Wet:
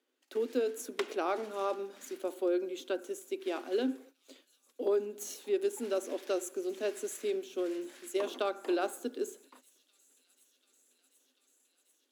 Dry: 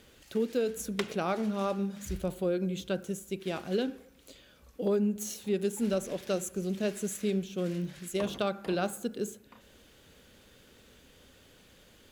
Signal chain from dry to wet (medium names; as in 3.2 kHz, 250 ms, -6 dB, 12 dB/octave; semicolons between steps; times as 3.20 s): gate -54 dBFS, range -20 dB; rippled Chebyshev high-pass 250 Hz, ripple 3 dB; bass shelf 330 Hz +6.5 dB; on a send: feedback echo behind a high-pass 741 ms, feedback 79%, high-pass 4.7 kHz, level -19.5 dB; on the sum: trim -1 dB